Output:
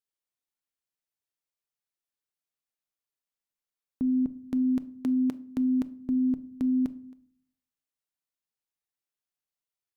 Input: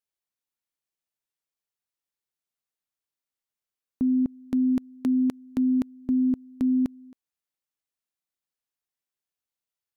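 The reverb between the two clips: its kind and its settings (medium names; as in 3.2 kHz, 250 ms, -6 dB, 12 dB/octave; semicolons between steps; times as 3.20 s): simulated room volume 660 m³, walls furnished, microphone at 0.45 m; trim -3.5 dB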